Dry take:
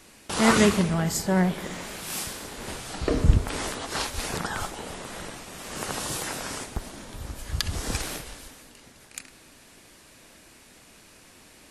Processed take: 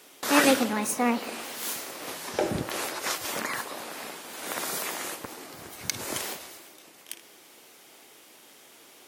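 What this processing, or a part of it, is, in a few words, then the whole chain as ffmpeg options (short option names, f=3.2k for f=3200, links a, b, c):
nightcore: -af "asetrate=56889,aresample=44100,highpass=270"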